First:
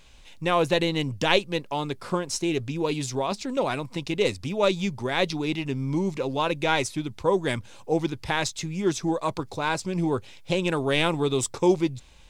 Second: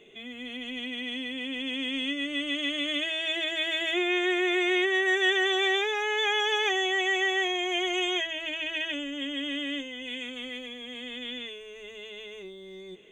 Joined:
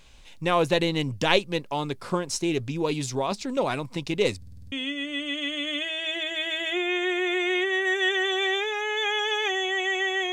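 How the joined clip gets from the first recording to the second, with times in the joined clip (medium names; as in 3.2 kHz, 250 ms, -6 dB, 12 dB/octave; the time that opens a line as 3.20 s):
first
4.37 s: stutter in place 0.05 s, 7 plays
4.72 s: go over to second from 1.93 s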